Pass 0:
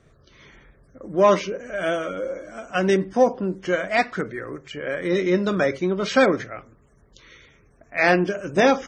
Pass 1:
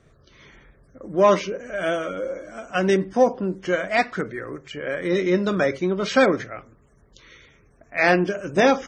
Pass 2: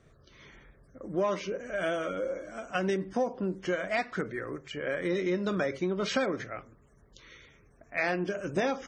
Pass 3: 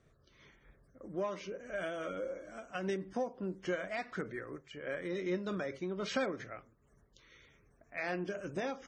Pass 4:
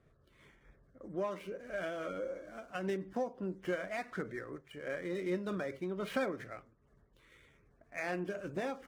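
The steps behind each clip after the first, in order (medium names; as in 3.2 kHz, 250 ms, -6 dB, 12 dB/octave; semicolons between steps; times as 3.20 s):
no audible change
compression 5:1, threshold -22 dBFS, peak gain reduction 10.5 dB; trim -4 dB
random flutter of the level, depth 65%; trim -4 dB
median filter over 9 samples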